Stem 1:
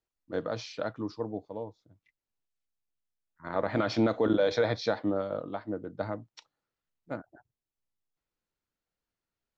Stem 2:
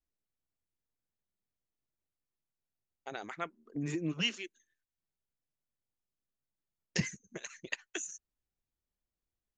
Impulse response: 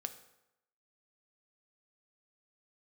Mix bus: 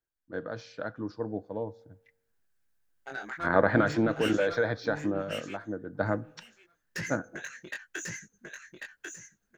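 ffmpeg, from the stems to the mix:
-filter_complex "[0:a]deesser=0.95,equalizer=frequency=2700:width=0.32:gain=-7,volume=3dB,afade=type=out:start_time=3.43:duration=0.52:silence=0.266073,afade=type=in:start_time=5.85:duration=0.27:silence=0.398107,asplit=2[link_01][link_02];[link_02]volume=-10dB[link_03];[1:a]acontrast=56,asoftclip=type=tanh:threshold=-28dB,flanger=delay=17.5:depth=5.6:speed=0.44,volume=-16.5dB,asplit=2[link_04][link_05];[link_05]volume=-4dB[link_06];[2:a]atrim=start_sample=2205[link_07];[link_03][link_07]afir=irnorm=-1:irlink=0[link_08];[link_06]aecho=0:1:1093|2186|3279:1|0.18|0.0324[link_09];[link_01][link_04][link_08][link_09]amix=inputs=4:normalize=0,equalizer=frequency=1600:width_type=o:width=0.39:gain=14,dynaudnorm=framelen=400:gausssize=9:maxgain=14.5dB"

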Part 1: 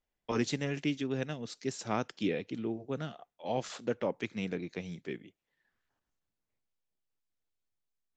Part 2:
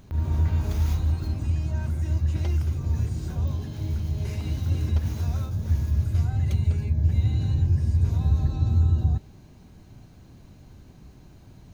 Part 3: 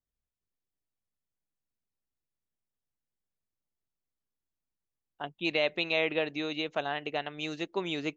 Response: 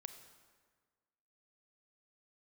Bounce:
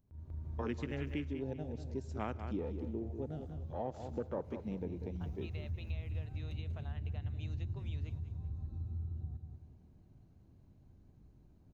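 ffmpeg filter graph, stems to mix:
-filter_complex "[0:a]afwtdn=0.0126,adelay=300,volume=2dB,asplit=3[link_01][link_02][link_03];[link_02]volume=-4.5dB[link_04];[link_03]volume=-9dB[link_05];[1:a]tiltshelf=frequency=1100:gain=6.5,volume=-17.5dB,asplit=3[link_06][link_07][link_08];[link_07]volume=-8.5dB[link_09];[link_08]volume=-3dB[link_10];[2:a]acompressor=threshold=-32dB:ratio=6,volume=-9.5dB,asplit=3[link_11][link_12][link_13];[link_12]volume=-17dB[link_14];[link_13]apad=whole_len=517614[link_15];[link_06][link_15]sidechaingate=range=-33dB:threshold=-56dB:ratio=16:detection=peak[link_16];[3:a]atrim=start_sample=2205[link_17];[link_04][link_09]amix=inputs=2:normalize=0[link_18];[link_18][link_17]afir=irnorm=-1:irlink=0[link_19];[link_05][link_10][link_14]amix=inputs=3:normalize=0,aecho=0:1:192|384|576|768:1|0.29|0.0841|0.0244[link_20];[link_01][link_16][link_11][link_19][link_20]amix=inputs=5:normalize=0,acompressor=threshold=-44dB:ratio=2"

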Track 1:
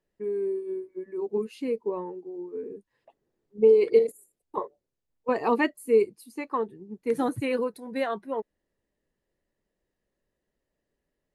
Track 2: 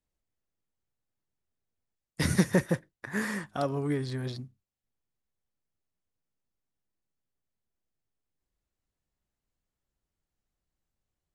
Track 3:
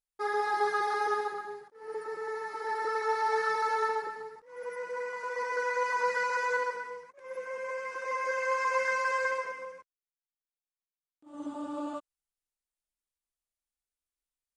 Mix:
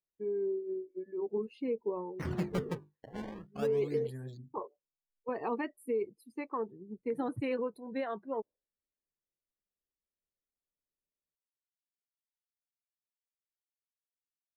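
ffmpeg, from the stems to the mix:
ffmpeg -i stem1.wav -i stem2.wav -filter_complex "[0:a]alimiter=limit=-20.5dB:level=0:latency=1:release=173,volume=-4.5dB[link_01];[1:a]lowshelf=frequency=79:gain=7,bandreject=frequency=50:width_type=h:width=6,bandreject=frequency=100:width_type=h:width=6,bandreject=frequency=150:width_type=h:width=6,bandreject=frequency=200:width_type=h:width=6,bandreject=frequency=250:width_type=h:width=6,bandreject=frequency=300:width_type=h:width=6,bandreject=frequency=350:width_type=h:width=6,bandreject=frequency=400:width_type=h:width=6,bandreject=frequency=450:width_type=h:width=6,acrusher=samples=20:mix=1:aa=0.000001:lfo=1:lforange=32:lforate=0.41,volume=-10dB[link_02];[link_01][link_02]amix=inputs=2:normalize=0,afftdn=noise_reduction=18:noise_floor=-55,highshelf=frequency=2800:gain=-6.5" out.wav

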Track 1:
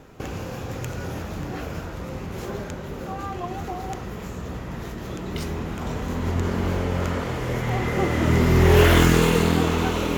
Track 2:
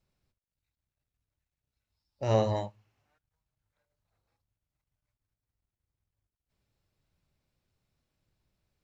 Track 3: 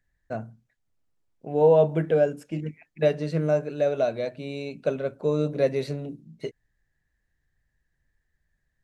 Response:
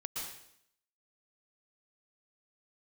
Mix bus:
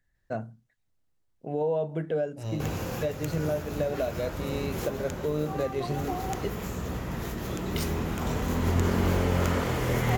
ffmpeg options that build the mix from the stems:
-filter_complex "[0:a]highshelf=frequency=9800:gain=11,adelay=2400,volume=-0.5dB[link_01];[1:a]acrossover=split=290|3000[link_02][link_03][link_04];[link_03]acompressor=threshold=-48dB:ratio=2[link_05];[link_02][link_05][link_04]amix=inputs=3:normalize=0,adelay=150,volume=-3dB[link_06];[2:a]bandreject=frequency=2400:width=15,volume=0dB,asplit=2[link_07][link_08];[link_08]apad=whole_len=554723[link_09];[link_01][link_09]sidechaincompress=threshold=-23dB:ratio=8:attack=20:release=761[link_10];[link_06][link_07]amix=inputs=2:normalize=0,alimiter=limit=-20.5dB:level=0:latency=1:release=358,volume=0dB[link_11];[link_10][link_11]amix=inputs=2:normalize=0"

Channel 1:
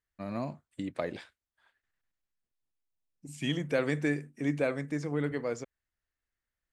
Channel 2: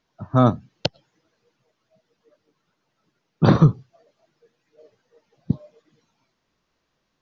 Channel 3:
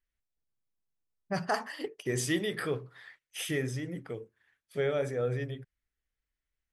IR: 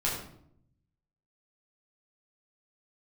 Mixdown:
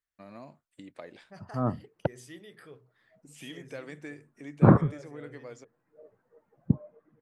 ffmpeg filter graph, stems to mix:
-filter_complex "[0:a]lowshelf=frequency=180:gain=-10,acompressor=threshold=-48dB:ratio=1.5,volume=-3.5dB[link_01];[1:a]lowpass=frequency=1600:width=0.5412,lowpass=frequency=1600:width=1.3066,adelay=1200,volume=-2dB[link_02];[2:a]bandreject=frequency=60:width_type=h:width=6,bandreject=frequency=120:width_type=h:width=6,volume=-17.5dB,asplit=2[link_03][link_04];[link_04]apad=whole_len=371202[link_05];[link_02][link_05]sidechaincompress=threshold=-57dB:ratio=8:attack=16:release=276[link_06];[link_01][link_06][link_03]amix=inputs=3:normalize=0"

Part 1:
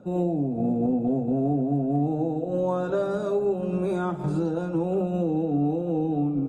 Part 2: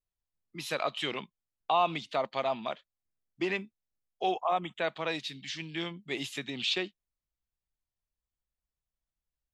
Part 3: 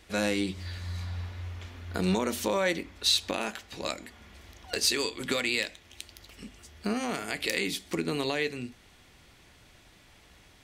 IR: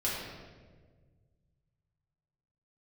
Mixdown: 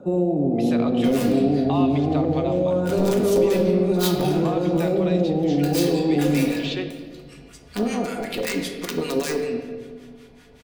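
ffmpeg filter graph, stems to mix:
-filter_complex "[0:a]alimiter=limit=-21dB:level=0:latency=1,volume=-1.5dB,asplit=2[link_01][link_02];[link_02]volume=-8dB[link_03];[1:a]volume=-4dB,asplit=3[link_04][link_05][link_06];[link_05]volume=-12.5dB[link_07];[2:a]aeval=exprs='(mod(8.41*val(0)+1,2)-1)/8.41':channel_layout=same,aecho=1:1:4.2:0.42,acrossover=split=960[link_08][link_09];[link_08]aeval=exprs='val(0)*(1-1/2+1/2*cos(2*PI*5.2*n/s))':channel_layout=same[link_10];[link_09]aeval=exprs='val(0)*(1-1/2-1/2*cos(2*PI*5.2*n/s))':channel_layout=same[link_11];[link_10][link_11]amix=inputs=2:normalize=0,adelay=900,volume=0.5dB,asplit=2[link_12][link_13];[link_13]volume=-6.5dB[link_14];[link_06]apad=whole_len=508690[link_15];[link_12][link_15]sidechaincompress=threshold=-47dB:ratio=8:attack=16:release=539[link_16];[3:a]atrim=start_sample=2205[link_17];[link_03][link_07][link_14]amix=inputs=3:normalize=0[link_18];[link_18][link_17]afir=irnorm=-1:irlink=0[link_19];[link_01][link_04][link_16][link_19]amix=inputs=4:normalize=0,equalizer=frequency=500:width=0.55:gain=7,acrossover=split=420|3000[link_20][link_21][link_22];[link_21]acompressor=threshold=-28dB:ratio=2.5[link_23];[link_20][link_23][link_22]amix=inputs=3:normalize=0"

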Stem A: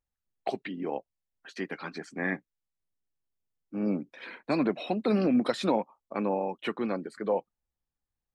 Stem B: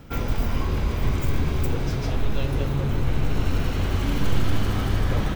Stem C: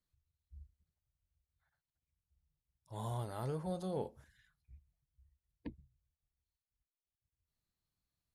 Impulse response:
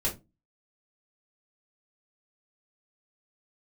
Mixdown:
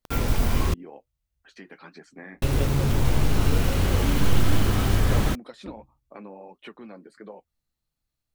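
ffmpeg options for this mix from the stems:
-filter_complex "[0:a]acompressor=threshold=-34dB:ratio=3,flanger=delay=4.7:depth=5.3:regen=-57:speed=1.5:shape=triangular,volume=-2dB[link_01];[1:a]acrusher=bits=5:mix=0:aa=0.000001,volume=1.5dB,asplit=3[link_02][link_03][link_04];[link_02]atrim=end=0.74,asetpts=PTS-STARTPTS,afade=type=out:start_time=0.736:duration=0.004:curve=hsin[link_05];[link_03]atrim=start=0.74:end=2.42,asetpts=PTS-STARTPTS,volume=0[link_06];[link_04]atrim=start=2.42,asetpts=PTS-STARTPTS,afade=type=in:duration=0.004:curve=hsin[link_07];[link_05][link_06][link_07]concat=n=3:v=0:a=1[link_08];[2:a]volume=2dB,asplit=2[link_09][link_10];[link_10]volume=-12.5dB[link_11];[3:a]atrim=start_sample=2205[link_12];[link_11][link_12]afir=irnorm=-1:irlink=0[link_13];[link_01][link_08][link_09][link_13]amix=inputs=4:normalize=0"

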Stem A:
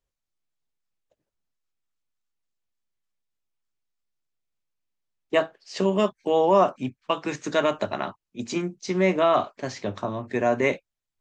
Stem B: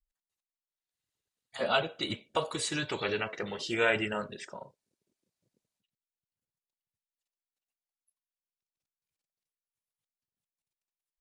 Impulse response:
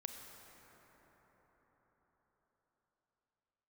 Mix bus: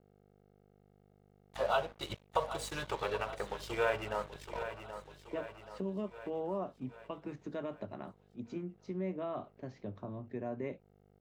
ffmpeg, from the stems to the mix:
-filter_complex "[0:a]lowpass=2400,equalizer=frequency=1700:width=0.33:gain=-13,volume=-7dB[link_01];[1:a]equalizer=frequency=125:width_type=o:width=1:gain=3,equalizer=frequency=250:width_type=o:width=1:gain=-12,equalizer=frequency=500:width_type=o:width=1:gain=5,equalizer=frequency=1000:width_type=o:width=1:gain=8,equalizer=frequency=2000:width_type=o:width=1:gain=-6,equalizer=frequency=4000:width_type=o:width=1:gain=-3,equalizer=frequency=8000:width_type=o:width=1:gain=-4,aeval=exprs='val(0)+0.00562*(sin(2*PI*50*n/s)+sin(2*PI*2*50*n/s)/2+sin(2*PI*3*50*n/s)/3+sin(2*PI*4*50*n/s)/4+sin(2*PI*5*50*n/s)/5)':channel_layout=same,aeval=exprs='sgn(val(0))*max(abs(val(0))-0.0075,0)':channel_layout=same,volume=2dB,asplit=2[link_02][link_03];[link_03]volume=-14.5dB,aecho=0:1:779|1558|2337|3116|3895|4674|5453|6232:1|0.52|0.27|0.141|0.0731|0.038|0.0198|0.0103[link_04];[link_01][link_02][link_04]amix=inputs=3:normalize=0,acompressor=threshold=-41dB:ratio=1.5"

